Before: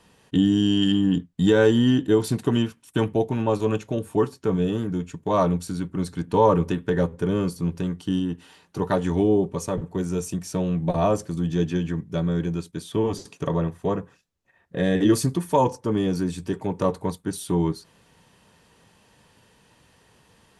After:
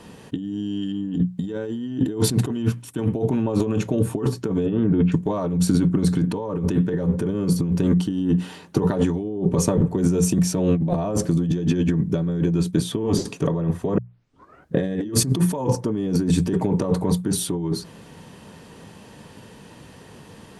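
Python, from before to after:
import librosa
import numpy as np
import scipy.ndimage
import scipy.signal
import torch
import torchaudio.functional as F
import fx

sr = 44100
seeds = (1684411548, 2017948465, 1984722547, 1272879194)

y = fx.lowpass(x, sr, hz=3200.0, slope=24, at=(4.66, 5.12))
y = fx.edit(y, sr, fx.tape_start(start_s=13.98, length_s=0.78), tone=tone)
y = fx.peak_eq(y, sr, hz=220.0, db=8.5, octaves=2.9)
y = fx.hum_notches(y, sr, base_hz=60, count=3)
y = fx.over_compress(y, sr, threshold_db=-24.0, ratio=-1.0)
y = y * 10.0 ** (2.0 / 20.0)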